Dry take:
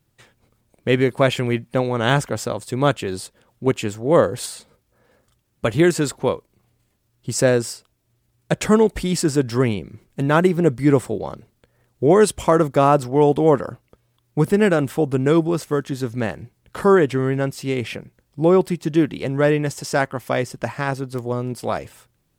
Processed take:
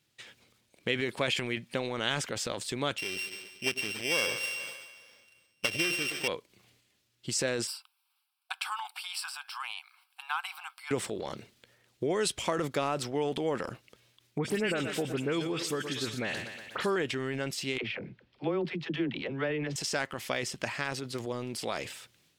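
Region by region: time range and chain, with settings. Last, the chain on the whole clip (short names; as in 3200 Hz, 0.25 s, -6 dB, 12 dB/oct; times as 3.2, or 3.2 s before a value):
2.98–6.28 sample sorter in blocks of 16 samples + low shelf 450 Hz -5.5 dB + split-band echo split 600 Hz, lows 0.101 s, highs 0.142 s, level -15 dB
7.67–10.91 brick-wall FIR high-pass 720 Hz + bell 3500 Hz -10 dB 0.78 oct + fixed phaser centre 1900 Hz, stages 6
14.38–16.96 dispersion highs, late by 64 ms, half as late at 2900 Hz + feedback echo 0.12 s, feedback 52%, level -16 dB + mismatched tape noise reduction encoder only
17.78–19.76 air absorption 330 m + dispersion lows, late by 58 ms, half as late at 410 Hz
whole clip: weighting filter D; compressor 2:1, threshold -27 dBFS; transient shaper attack +2 dB, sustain +8 dB; gain -7.5 dB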